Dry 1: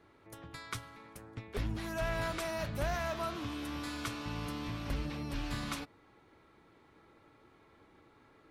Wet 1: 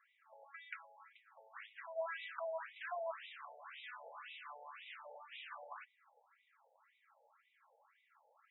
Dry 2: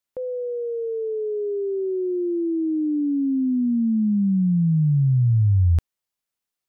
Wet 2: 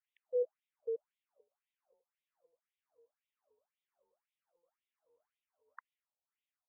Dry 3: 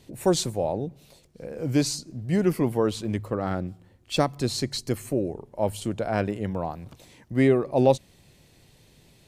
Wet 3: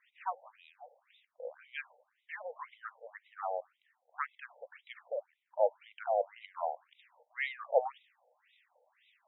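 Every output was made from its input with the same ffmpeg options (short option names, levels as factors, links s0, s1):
-af "afftfilt=real='re*between(b*sr/1024,620*pow(2800/620,0.5+0.5*sin(2*PI*1.9*pts/sr))/1.41,620*pow(2800/620,0.5+0.5*sin(2*PI*1.9*pts/sr))*1.41)':imag='im*between(b*sr/1024,620*pow(2800/620,0.5+0.5*sin(2*PI*1.9*pts/sr))/1.41,620*pow(2800/620,0.5+0.5*sin(2*PI*1.9*pts/sr))*1.41)':win_size=1024:overlap=0.75,volume=0.841"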